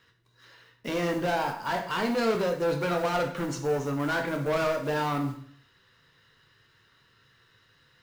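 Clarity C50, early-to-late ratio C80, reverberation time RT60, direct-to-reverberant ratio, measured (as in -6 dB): 8.0 dB, 11.5 dB, 0.55 s, 3.5 dB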